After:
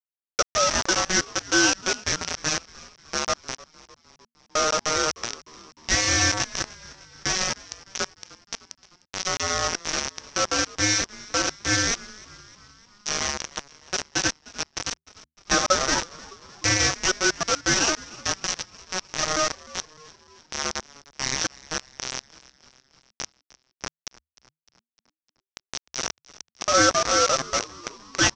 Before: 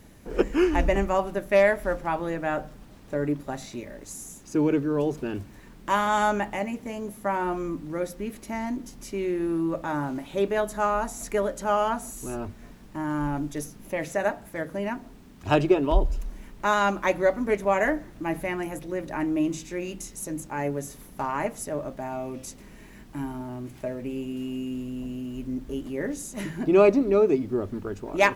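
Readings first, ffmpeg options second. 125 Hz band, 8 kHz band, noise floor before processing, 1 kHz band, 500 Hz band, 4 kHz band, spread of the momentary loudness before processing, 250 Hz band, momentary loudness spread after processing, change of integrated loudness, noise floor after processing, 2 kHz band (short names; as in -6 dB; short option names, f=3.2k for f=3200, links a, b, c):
-2.0 dB, +17.0 dB, -48 dBFS, -0.5 dB, -6.0 dB, +17.5 dB, 14 LU, -7.0 dB, 17 LU, +3.0 dB, under -85 dBFS, +5.5 dB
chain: -filter_complex "[0:a]highpass=78,acrossover=split=3700[a][b];[b]acompressor=threshold=-55dB:ratio=4:attack=1:release=60[c];[a][c]amix=inputs=2:normalize=0,aresample=16000,acrusher=bits=3:mix=0:aa=0.000001,aresample=44100,aeval=exprs='val(0)*sin(2*PI*930*n/s)':c=same,lowpass=f=5.8k:t=q:w=7.8,asplit=2[d][e];[e]asplit=5[f][g][h][i][j];[f]adelay=304,afreqshift=-79,volume=-21dB[k];[g]adelay=608,afreqshift=-158,volume=-25.3dB[l];[h]adelay=912,afreqshift=-237,volume=-29.6dB[m];[i]adelay=1216,afreqshift=-316,volume=-33.9dB[n];[j]adelay=1520,afreqshift=-395,volume=-38.2dB[o];[k][l][m][n][o]amix=inputs=5:normalize=0[p];[d][p]amix=inputs=2:normalize=0"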